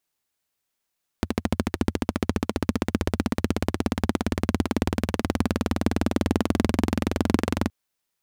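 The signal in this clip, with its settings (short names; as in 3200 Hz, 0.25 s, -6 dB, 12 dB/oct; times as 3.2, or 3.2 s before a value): single-cylinder engine model, changing speed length 6.47 s, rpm 1600, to 2700, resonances 87/220 Hz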